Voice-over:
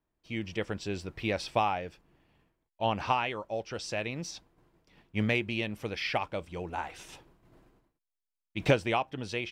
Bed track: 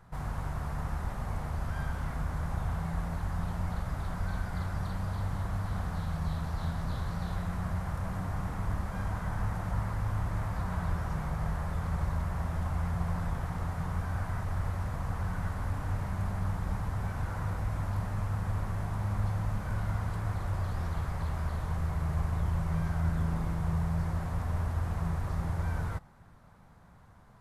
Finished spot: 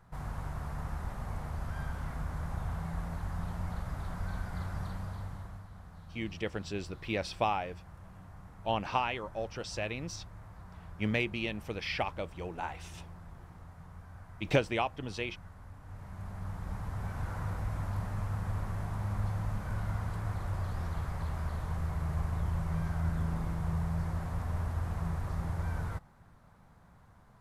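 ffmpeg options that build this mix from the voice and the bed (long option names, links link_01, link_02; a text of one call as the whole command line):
ffmpeg -i stem1.wav -i stem2.wav -filter_complex "[0:a]adelay=5850,volume=-2.5dB[link_01];[1:a]volume=10.5dB,afade=type=out:start_time=4.82:duration=0.86:silence=0.223872,afade=type=in:start_time=15.82:duration=1.46:silence=0.199526[link_02];[link_01][link_02]amix=inputs=2:normalize=0" out.wav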